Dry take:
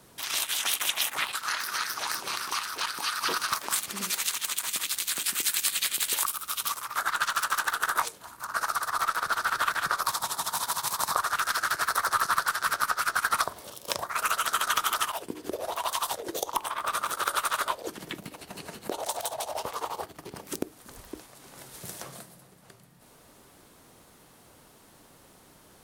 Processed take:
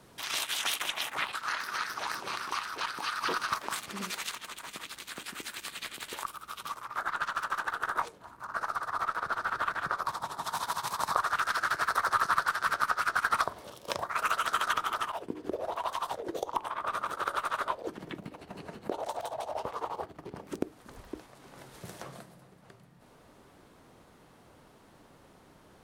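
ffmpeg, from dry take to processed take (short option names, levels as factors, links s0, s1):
-af "asetnsamples=n=441:p=0,asendcmd='0.82 lowpass f 2100;4.35 lowpass f 1000;10.43 lowpass f 2400;14.73 lowpass f 1200;20.61 lowpass f 2200',lowpass=f=4200:p=1"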